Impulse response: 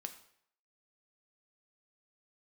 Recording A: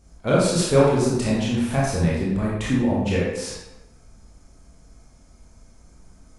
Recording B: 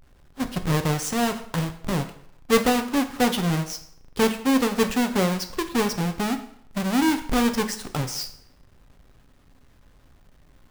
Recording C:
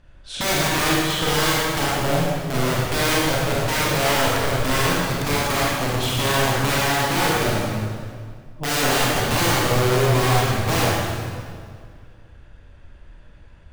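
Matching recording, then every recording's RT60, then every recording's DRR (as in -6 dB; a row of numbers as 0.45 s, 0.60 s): B; 1.0 s, 0.65 s, 2.0 s; -6.0 dB, 6.5 dB, -6.0 dB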